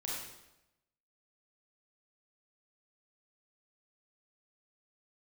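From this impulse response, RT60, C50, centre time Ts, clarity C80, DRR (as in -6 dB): 0.90 s, -1.0 dB, 72 ms, 2.5 dB, -5.5 dB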